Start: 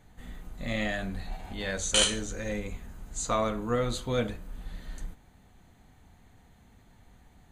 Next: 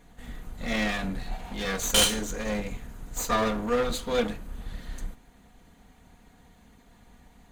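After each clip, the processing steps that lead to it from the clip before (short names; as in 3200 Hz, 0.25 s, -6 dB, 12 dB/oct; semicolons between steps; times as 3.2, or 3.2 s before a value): minimum comb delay 4.2 ms; gain +4 dB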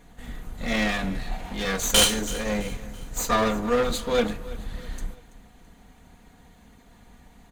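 feedback echo 0.331 s, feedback 44%, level -19 dB; gain +3 dB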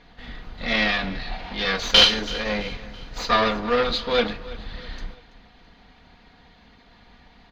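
EQ curve 190 Hz 0 dB, 4900 Hz +10 dB, 8300 Hz -25 dB, 12000 Hz -19 dB; gain -2 dB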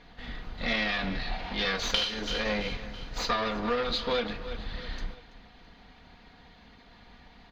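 compressor 16:1, threshold -23 dBFS, peak gain reduction 14.5 dB; gain -1.5 dB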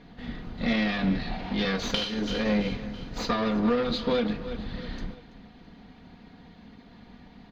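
bell 210 Hz +12.5 dB 2.3 oct; gain -2.5 dB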